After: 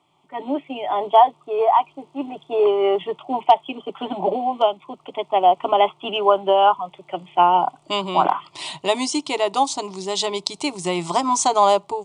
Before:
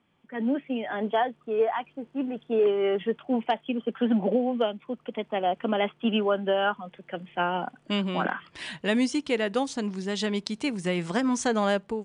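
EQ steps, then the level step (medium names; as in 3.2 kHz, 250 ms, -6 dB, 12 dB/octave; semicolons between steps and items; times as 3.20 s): graphic EQ 125/500/1000/2000/4000/8000 Hz +4/+10/+10/+7/+8/+12 dB; dynamic bell 1 kHz, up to +4 dB, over -27 dBFS, Q 1.9; static phaser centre 330 Hz, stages 8; 0.0 dB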